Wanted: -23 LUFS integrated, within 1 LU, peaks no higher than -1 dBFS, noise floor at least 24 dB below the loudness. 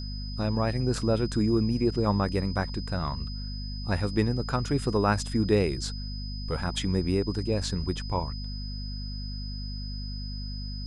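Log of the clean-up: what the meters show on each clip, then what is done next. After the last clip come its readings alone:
hum 50 Hz; harmonics up to 250 Hz; hum level -32 dBFS; steady tone 5000 Hz; tone level -41 dBFS; loudness -29.0 LUFS; peak -10.5 dBFS; loudness target -23.0 LUFS
-> de-hum 50 Hz, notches 5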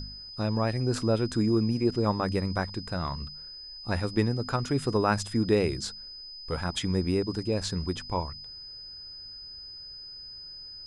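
hum none; steady tone 5000 Hz; tone level -41 dBFS
-> notch 5000 Hz, Q 30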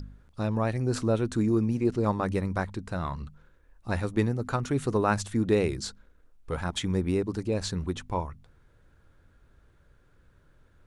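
steady tone none; loudness -29.0 LUFS; peak -10.5 dBFS; loudness target -23.0 LUFS
-> gain +6 dB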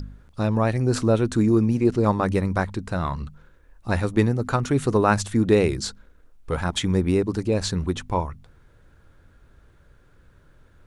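loudness -23.0 LUFS; peak -4.5 dBFS; noise floor -56 dBFS

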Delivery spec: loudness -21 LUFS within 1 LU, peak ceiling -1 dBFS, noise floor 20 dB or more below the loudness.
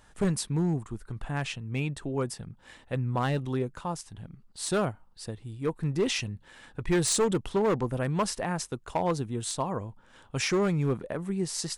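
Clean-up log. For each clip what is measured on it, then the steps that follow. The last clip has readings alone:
clipped 1.3%; flat tops at -20.0 dBFS; loudness -30.0 LUFS; peak -20.0 dBFS; loudness target -21.0 LUFS
-> clip repair -20 dBFS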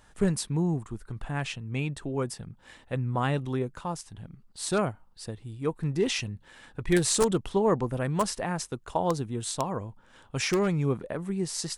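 clipped 0.0%; loudness -29.5 LUFS; peak -11.0 dBFS; loudness target -21.0 LUFS
-> gain +8.5 dB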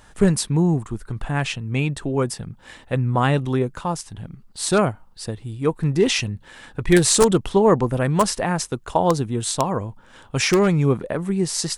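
loudness -21.0 LUFS; peak -2.5 dBFS; noise floor -49 dBFS

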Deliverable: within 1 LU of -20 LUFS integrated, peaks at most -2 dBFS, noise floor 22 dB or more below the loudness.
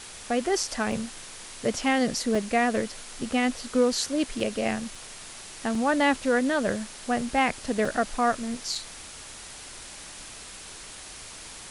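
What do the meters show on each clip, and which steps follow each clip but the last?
dropouts 7; longest dropout 3.2 ms; noise floor -43 dBFS; noise floor target -49 dBFS; loudness -27.0 LUFS; peak -11.0 dBFS; loudness target -20.0 LUFS
-> interpolate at 0.92/2.35/4.4/4.95/5.75/7.85/8.75, 3.2 ms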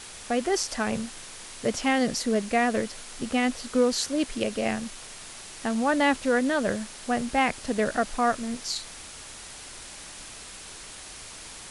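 dropouts 0; noise floor -43 dBFS; noise floor target -49 dBFS
-> noise print and reduce 6 dB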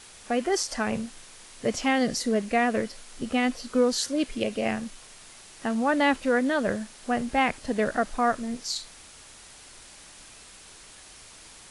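noise floor -49 dBFS; loudness -27.0 LUFS; peak -11.0 dBFS; loudness target -20.0 LUFS
-> gain +7 dB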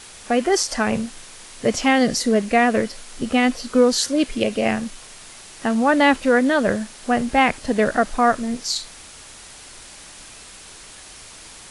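loudness -20.0 LUFS; peak -4.0 dBFS; noise floor -42 dBFS

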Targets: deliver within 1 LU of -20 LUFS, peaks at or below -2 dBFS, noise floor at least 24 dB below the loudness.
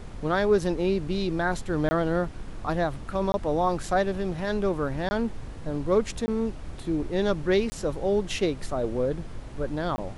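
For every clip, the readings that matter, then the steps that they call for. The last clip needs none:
dropouts 6; longest dropout 20 ms; noise floor -40 dBFS; noise floor target -52 dBFS; loudness -27.5 LUFS; peak -11.0 dBFS; loudness target -20.0 LUFS
-> interpolate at 1.89/3.32/5.09/6.26/7.7/9.96, 20 ms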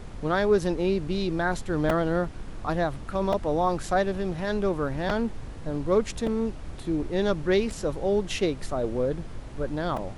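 dropouts 0; noise floor -39 dBFS; noise floor target -52 dBFS
-> noise print and reduce 13 dB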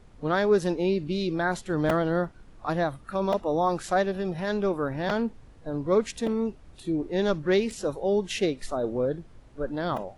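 noise floor -51 dBFS; noise floor target -52 dBFS
-> noise print and reduce 6 dB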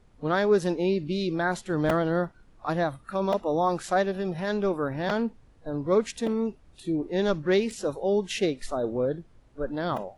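noise floor -57 dBFS; loudness -27.5 LUFS; peak -11.5 dBFS; loudness target -20.0 LUFS
-> gain +7.5 dB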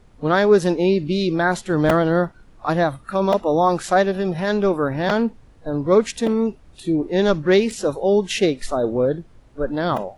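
loudness -20.0 LUFS; peak -4.0 dBFS; noise floor -49 dBFS

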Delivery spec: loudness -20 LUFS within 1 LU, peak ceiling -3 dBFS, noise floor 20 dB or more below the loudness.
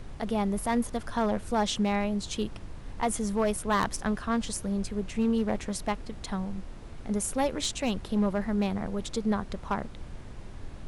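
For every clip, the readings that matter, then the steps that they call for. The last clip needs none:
clipped 0.9%; flat tops at -19.5 dBFS; noise floor -43 dBFS; noise floor target -50 dBFS; loudness -30.0 LUFS; peak -19.5 dBFS; loudness target -20.0 LUFS
-> clip repair -19.5 dBFS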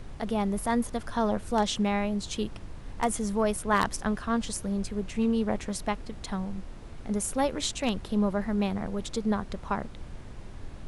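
clipped 0.0%; noise floor -43 dBFS; noise floor target -50 dBFS
-> noise print and reduce 7 dB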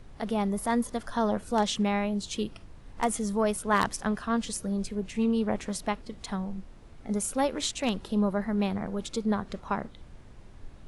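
noise floor -49 dBFS; noise floor target -50 dBFS
-> noise print and reduce 6 dB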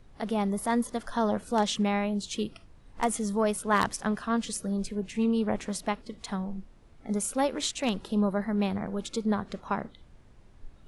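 noise floor -55 dBFS; loudness -29.5 LUFS; peak -10.5 dBFS; loudness target -20.0 LUFS
-> gain +9.5 dB; limiter -3 dBFS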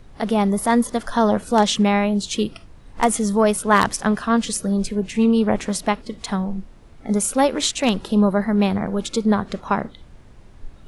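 loudness -20.5 LUFS; peak -3.0 dBFS; noise floor -45 dBFS

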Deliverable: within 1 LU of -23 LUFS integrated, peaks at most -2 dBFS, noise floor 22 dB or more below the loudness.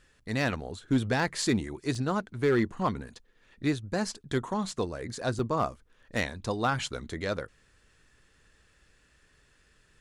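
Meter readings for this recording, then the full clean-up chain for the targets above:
clipped 0.2%; flat tops at -18.0 dBFS; dropouts 3; longest dropout 2.8 ms; loudness -31.0 LUFS; peak -18.0 dBFS; loudness target -23.0 LUFS
-> clip repair -18 dBFS; interpolate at 1.42/1.95/5.39, 2.8 ms; gain +8 dB

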